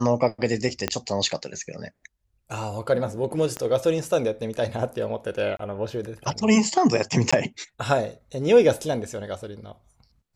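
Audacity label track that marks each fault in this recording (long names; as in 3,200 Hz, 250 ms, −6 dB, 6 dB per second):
0.880000	0.880000	click −8 dBFS
3.570000	3.570000	click −16 dBFS
5.570000	5.590000	drop-out 23 ms
7.310000	7.330000	drop-out 15 ms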